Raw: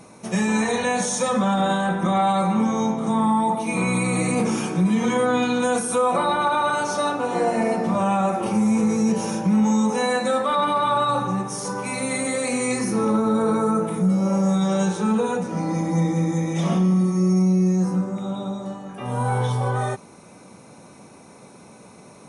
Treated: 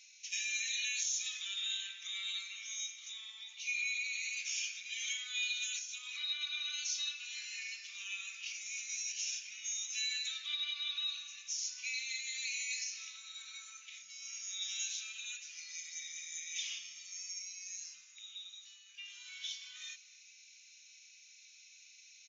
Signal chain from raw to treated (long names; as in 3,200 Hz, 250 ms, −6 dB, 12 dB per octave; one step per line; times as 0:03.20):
elliptic high-pass filter 2,500 Hz, stop band 70 dB
far-end echo of a speakerphone 260 ms, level −21 dB
downward compressor 4 to 1, threshold −32 dBFS, peak gain reduction 7.5 dB
WMA 64 kbit/s 16,000 Hz